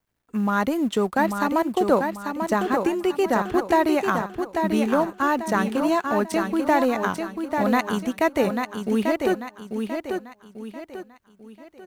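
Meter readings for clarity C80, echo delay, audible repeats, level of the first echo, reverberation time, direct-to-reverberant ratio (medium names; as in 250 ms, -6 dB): no reverb, 842 ms, 4, -5.5 dB, no reverb, no reverb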